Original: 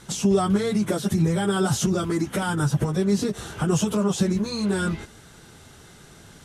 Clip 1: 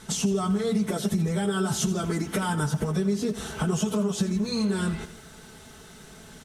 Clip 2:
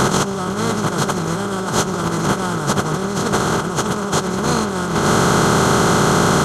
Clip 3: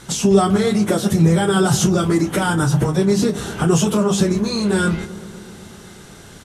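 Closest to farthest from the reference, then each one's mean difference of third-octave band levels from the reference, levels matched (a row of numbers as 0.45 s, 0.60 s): 3, 1, 2; 2.0 dB, 3.0 dB, 11.0 dB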